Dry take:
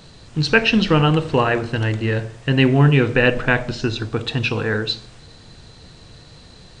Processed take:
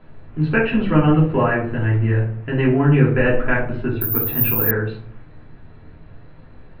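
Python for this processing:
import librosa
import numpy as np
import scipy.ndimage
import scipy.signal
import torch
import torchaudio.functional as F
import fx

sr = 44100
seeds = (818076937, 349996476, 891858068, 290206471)

y = scipy.signal.sosfilt(scipy.signal.butter(4, 2200.0, 'lowpass', fs=sr, output='sos'), x)
y = fx.room_shoebox(y, sr, seeds[0], volume_m3=220.0, walls='furnished', distance_m=3.0)
y = fx.resample_bad(y, sr, factor=3, down='none', up='zero_stuff', at=(4.01, 4.71))
y = y * librosa.db_to_amplitude(-7.5)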